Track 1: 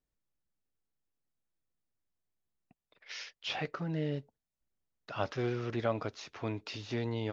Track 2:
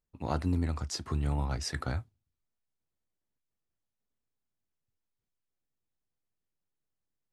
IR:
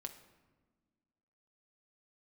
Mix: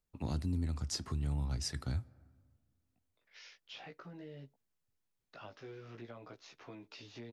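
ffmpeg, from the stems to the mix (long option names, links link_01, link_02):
-filter_complex "[0:a]flanger=delay=15:depth=3.8:speed=0.47,highpass=120,acompressor=threshold=-43dB:ratio=2.5,adelay=250,volume=-5dB[link_01];[1:a]volume=-0.5dB,asplit=3[link_02][link_03][link_04];[link_03]volume=-11.5dB[link_05];[link_04]apad=whole_len=333918[link_06];[link_01][link_06]sidechaincompress=threshold=-49dB:ratio=8:attack=35:release=1330[link_07];[2:a]atrim=start_sample=2205[link_08];[link_05][link_08]afir=irnorm=-1:irlink=0[link_09];[link_07][link_02][link_09]amix=inputs=3:normalize=0,acrossover=split=300|3000[link_10][link_11][link_12];[link_11]acompressor=threshold=-47dB:ratio=4[link_13];[link_10][link_13][link_12]amix=inputs=3:normalize=0,alimiter=level_in=2.5dB:limit=-24dB:level=0:latency=1:release=453,volume=-2.5dB"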